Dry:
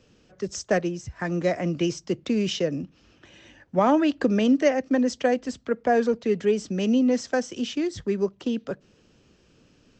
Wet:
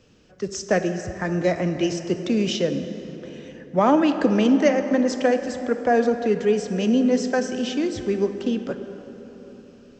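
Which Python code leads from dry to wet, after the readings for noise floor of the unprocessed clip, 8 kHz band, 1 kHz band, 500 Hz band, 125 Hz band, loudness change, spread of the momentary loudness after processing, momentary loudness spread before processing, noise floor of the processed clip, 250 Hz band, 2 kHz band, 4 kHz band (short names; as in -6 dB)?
-60 dBFS, +2.5 dB, +2.5 dB, +3.0 dB, +2.5 dB, +2.5 dB, 15 LU, 11 LU, -49 dBFS, +2.5 dB, +2.5 dB, +2.5 dB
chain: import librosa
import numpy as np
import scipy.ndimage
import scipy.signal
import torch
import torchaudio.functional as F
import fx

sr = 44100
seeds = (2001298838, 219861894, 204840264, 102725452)

y = fx.rev_plate(x, sr, seeds[0], rt60_s=4.2, hf_ratio=0.45, predelay_ms=0, drr_db=7.5)
y = y * 10.0 ** (2.0 / 20.0)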